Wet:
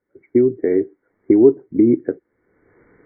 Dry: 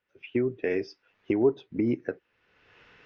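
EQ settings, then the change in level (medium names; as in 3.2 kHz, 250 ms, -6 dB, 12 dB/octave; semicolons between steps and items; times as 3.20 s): brick-wall FIR low-pass 2.3 kHz; bass shelf 200 Hz +8.5 dB; peaking EQ 330 Hz +14.5 dB 1.4 oct; -2.5 dB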